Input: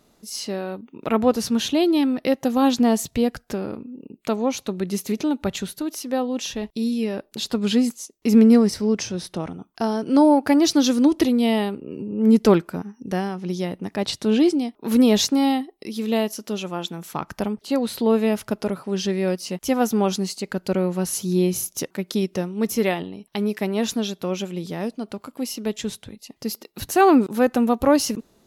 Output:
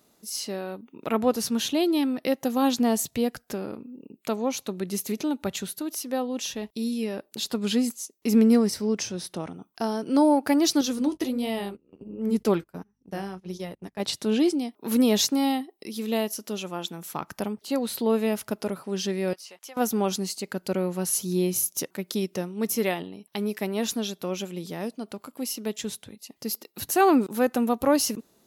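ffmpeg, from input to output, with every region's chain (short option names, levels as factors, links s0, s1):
-filter_complex "[0:a]asettb=1/sr,asplit=3[s0][s1][s2];[s0]atrim=end=10.814[s3];[s1]atrim=start=10.81:end=14,asetpts=PTS-STARTPTS,afade=t=in:d=0.004:c=qsin,afade=t=out:st=3.186:d=0.004:c=qsin,flanger=delay=1.5:depth=9.5:regen=-45:speed=1.4:shape=sinusoidal,aeval=exprs='val(0)+0.00355*(sin(2*PI*50*n/s)+sin(2*PI*2*50*n/s)/2+sin(2*PI*3*50*n/s)/3+sin(2*PI*4*50*n/s)/4+sin(2*PI*5*50*n/s)/5)':c=same,agate=range=0.1:threshold=0.0178:ratio=16:release=100:detection=peak[s4];[s2]atrim=start=13.996[s5];[s3][s4]acrossfade=d=0.004:c1=hsin:c2=qsin[s6];[s6][s5]acrossfade=d=0.004:c1=qsin:c2=hsin,asettb=1/sr,asplit=3[s7][s8][s9];[s7]atrim=end=19.334[s10];[s8]atrim=start=19.33:end=19.77,asetpts=PTS-STARTPTS,afade=t=in:d=0.004:c=qsin,afade=t=out:st=0.436:d=0.004:c=qsin,highpass=790,highshelf=f=6900:g=-11.5,acompressor=threshold=0.0112:ratio=3:attack=3.2:release=140:knee=1:detection=peak[s11];[s9]atrim=start=19.766[s12];[s10][s11]acrossfade=d=0.004:c1=hsin:c2=qsin[s13];[s13][s12]acrossfade=d=0.004:c1=qsin:c2=hsin,highpass=f=130:p=1,highshelf=f=9000:g=10,volume=0.631"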